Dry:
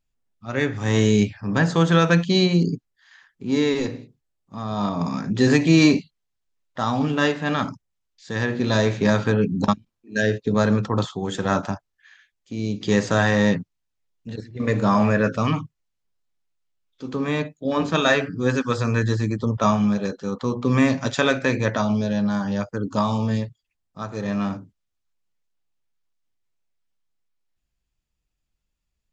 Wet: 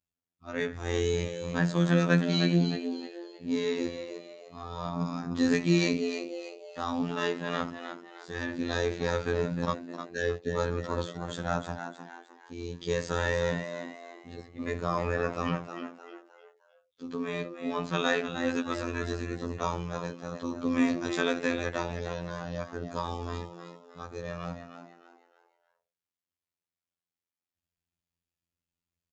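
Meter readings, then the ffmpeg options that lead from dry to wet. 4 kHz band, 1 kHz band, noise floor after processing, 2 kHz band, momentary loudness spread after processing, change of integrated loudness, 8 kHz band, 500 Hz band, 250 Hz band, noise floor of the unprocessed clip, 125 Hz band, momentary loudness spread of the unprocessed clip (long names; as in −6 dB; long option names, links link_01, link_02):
−8.0 dB, −9.0 dB, below −85 dBFS, −8.5 dB, 17 LU, −9.5 dB, can't be measured, −7.5 dB, −10.0 dB, −78 dBFS, −10.0 dB, 12 LU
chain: -filter_complex "[0:a]highpass=58,asplit=5[link_01][link_02][link_03][link_04][link_05];[link_02]adelay=308,afreqshift=91,volume=-9dB[link_06];[link_03]adelay=616,afreqshift=182,volume=-17.6dB[link_07];[link_04]adelay=924,afreqshift=273,volume=-26.3dB[link_08];[link_05]adelay=1232,afreqshift=364,volume=-34.9dB[link_09];[link_01][link_06][link_07][link_08][link_09]amix=inputs=5:normalize=0,afftfilt=real='hypot(re,im)*cos(PI*b)':imag='0':win_size=2048:overlap=0.75,volume=-5.5dB"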